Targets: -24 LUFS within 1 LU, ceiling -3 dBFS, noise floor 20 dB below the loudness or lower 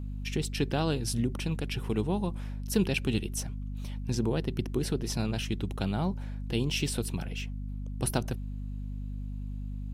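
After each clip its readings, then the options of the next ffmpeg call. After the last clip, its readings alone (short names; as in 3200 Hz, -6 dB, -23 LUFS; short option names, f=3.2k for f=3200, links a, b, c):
hum 50 Hz; harmonics up to 250 Hz; hum level -33 dBFS; loudness -32.5 LUFS; peak -11.5 dBFS; loudness target -24.0 LUFS
-> -af "bandreject=f=50:t=h:w=6,bandreject=f=100:t=h:w=6,bandreject=f=150:t=h:w=6,bandreject=f=200:t=h:w=6,bandreject=f=250:t=h:w=6"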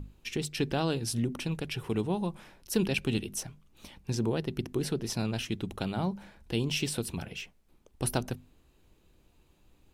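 hum none; loudness -32.5 LUFS; peak -13.0 dBFS; loudness target -24.0 LUFS
-> -af "volume=8.5dB"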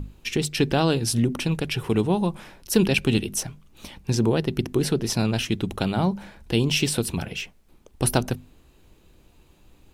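loudness -24.0 LUFS; peak -4.5 dBFS; noise floor -57 dBFS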